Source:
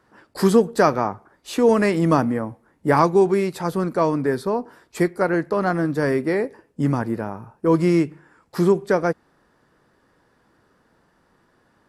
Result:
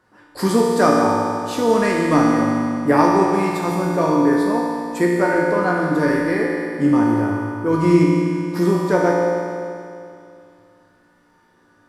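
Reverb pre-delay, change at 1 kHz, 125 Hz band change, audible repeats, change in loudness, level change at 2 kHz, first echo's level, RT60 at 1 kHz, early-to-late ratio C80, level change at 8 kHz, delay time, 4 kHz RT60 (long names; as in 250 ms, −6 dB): 3 ms, +4.0 dB, +2.0 dB, no echo audible, +3.0 dB, +5.0 dB, no echo audible, 2.5 s, 0.5 dB, +4.5 dB, no echo audible, 2.5 s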